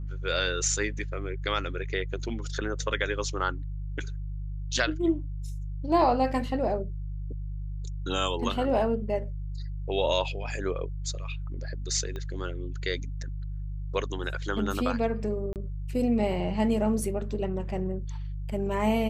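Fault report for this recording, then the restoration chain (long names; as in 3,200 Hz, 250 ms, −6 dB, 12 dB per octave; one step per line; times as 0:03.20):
mains hum 50 Hz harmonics 3 −34 dBFS
0:12.16: click −24 dBFS
0:15.53–0:15.56: drop-out 28 ms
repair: click removal
hum removal 50 Hz, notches 3
repair the gap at 0:15.53, 28 ms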